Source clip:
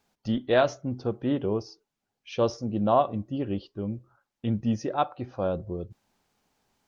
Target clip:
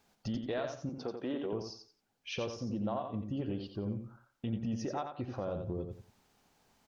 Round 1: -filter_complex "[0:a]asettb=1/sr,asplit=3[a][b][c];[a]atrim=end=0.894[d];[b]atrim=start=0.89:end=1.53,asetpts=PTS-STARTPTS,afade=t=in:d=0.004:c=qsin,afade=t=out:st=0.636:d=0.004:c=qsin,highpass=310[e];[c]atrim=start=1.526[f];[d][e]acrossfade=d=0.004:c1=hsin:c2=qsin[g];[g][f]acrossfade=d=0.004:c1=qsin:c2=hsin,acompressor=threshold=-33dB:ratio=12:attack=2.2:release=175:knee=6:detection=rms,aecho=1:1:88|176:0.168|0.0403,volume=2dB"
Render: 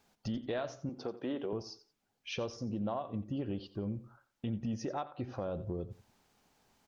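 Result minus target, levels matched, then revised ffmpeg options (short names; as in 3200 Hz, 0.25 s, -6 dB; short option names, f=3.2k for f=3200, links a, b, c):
echo-to-direct -9 dB
-filter_complex "[0:a]asettb=1/sr,asplit=3[a][b][c];[a]atrim=end=0.894[d];[b]atrim=start=0.89:end=1.53,asetpts=PTS-STARTPTS,afade=t=in:d=0.004:c=qsin,afade=t=out:st=0.636:d=0.004:c=qsin,highpass=310[e];[c]atrim=start=1.526[f];[d][e]acrossfade=d=0.004:c1=hsin:c2=qsin[g];[g][f]acrossfade=d=0.004:c1=qsin:c2=hsin,acompressor=threshold=-33dB:ratio=12:attack=2.2:release=175:knee=6:detection=rms,aecho=1:1:88|176|264:0.473|0.114|0.0273,volume=2dB"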